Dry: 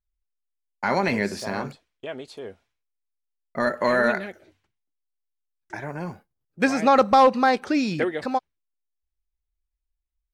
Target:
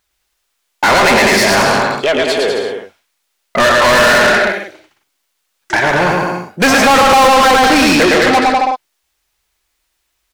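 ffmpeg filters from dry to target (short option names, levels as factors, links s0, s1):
-filter_complex "[0:a]aecho=1:1:110|198|268.4|324.7|369.8:0.631|0.398|0.251|0.158|0.1,asplit=2[s0][s1];[s1]highpass=f=720:p=1,volume=56.2,asoftclip=type=tanh:threshold=0.75[s2];[s0][s2]amix=inputs=2:normalize=0,lowpass=f=7600:p=1,volume=0.501"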